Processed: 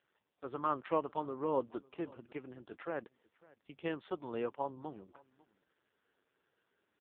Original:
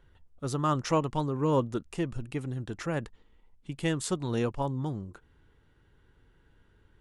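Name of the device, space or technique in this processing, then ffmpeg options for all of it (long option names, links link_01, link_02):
satellite phone: -af "highpass=370,lowpass=3100,aecho=1:1:547:0.0668,volume=-4dB" -ar 8000 -c:a libopencore_amrnb -b:a 5150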